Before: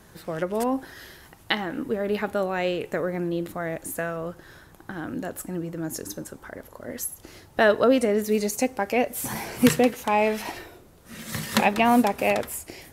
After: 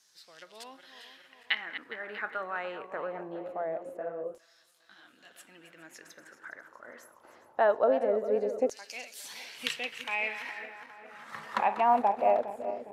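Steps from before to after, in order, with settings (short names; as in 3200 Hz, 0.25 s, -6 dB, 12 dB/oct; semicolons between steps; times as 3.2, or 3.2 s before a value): regenerating reverse delay 0.205 s, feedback 69%, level -11.5 dB; LFO band-pass saw down 0.23 Hz 460–5600 Hz; 3.97–5.32 detuned doubles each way 36 cents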